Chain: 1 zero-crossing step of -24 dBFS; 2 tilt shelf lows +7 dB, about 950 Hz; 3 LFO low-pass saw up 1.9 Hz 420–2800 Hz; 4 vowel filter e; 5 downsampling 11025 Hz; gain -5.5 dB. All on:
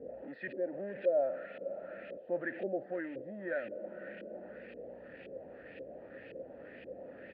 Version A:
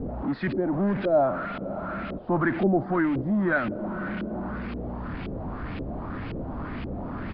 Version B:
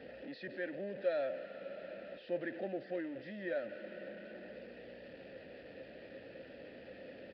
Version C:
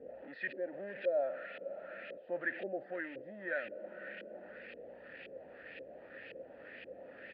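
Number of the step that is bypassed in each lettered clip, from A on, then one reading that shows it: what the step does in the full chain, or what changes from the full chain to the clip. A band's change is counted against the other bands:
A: 4, 500 Hz band -11.5 dB; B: 3, loudness change -3.5 LU; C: 2, 2 kHz band +8.0 dB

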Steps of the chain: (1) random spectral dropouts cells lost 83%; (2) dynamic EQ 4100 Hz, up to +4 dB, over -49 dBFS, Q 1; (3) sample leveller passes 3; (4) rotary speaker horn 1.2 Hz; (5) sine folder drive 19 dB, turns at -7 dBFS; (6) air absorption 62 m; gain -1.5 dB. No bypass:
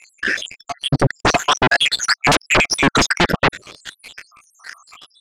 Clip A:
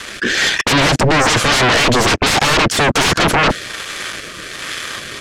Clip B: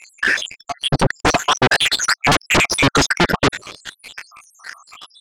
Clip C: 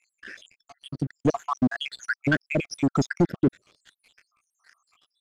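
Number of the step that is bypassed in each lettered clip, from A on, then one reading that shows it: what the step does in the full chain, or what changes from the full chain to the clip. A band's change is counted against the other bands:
1, crest factor change -4.0 dB; 4, momentary loudness spread change +3 LU; 5, crest factor change +8.0 dB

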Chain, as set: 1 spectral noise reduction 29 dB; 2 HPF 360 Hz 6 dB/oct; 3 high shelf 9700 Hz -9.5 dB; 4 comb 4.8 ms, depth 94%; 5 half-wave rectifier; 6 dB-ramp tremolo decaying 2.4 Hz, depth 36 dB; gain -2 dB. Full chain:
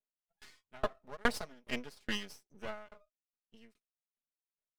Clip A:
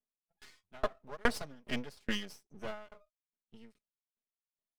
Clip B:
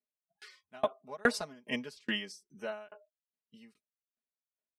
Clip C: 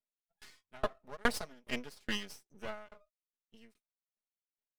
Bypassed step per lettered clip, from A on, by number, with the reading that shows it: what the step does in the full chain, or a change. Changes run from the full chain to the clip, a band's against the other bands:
2, 125 Hz band +3.0 dB; 5, distortion -1 dB; 3, 8 kHz band +2.0 dB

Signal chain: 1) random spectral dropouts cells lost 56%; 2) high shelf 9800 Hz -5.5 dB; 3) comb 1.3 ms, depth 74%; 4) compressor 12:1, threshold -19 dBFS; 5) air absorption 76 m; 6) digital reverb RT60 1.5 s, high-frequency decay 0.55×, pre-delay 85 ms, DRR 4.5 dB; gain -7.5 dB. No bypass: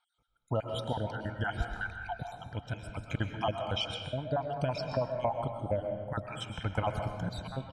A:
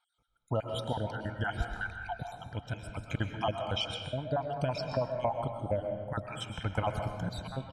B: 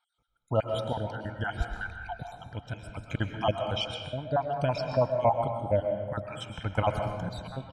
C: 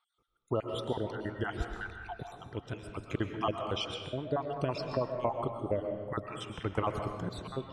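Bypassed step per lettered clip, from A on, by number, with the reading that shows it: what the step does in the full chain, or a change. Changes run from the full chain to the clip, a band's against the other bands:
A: 2, 8 kHz band +2.0 dB; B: 4, momentary loudness spread change +5 LU; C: 3, 250 Hz band +3.5 dB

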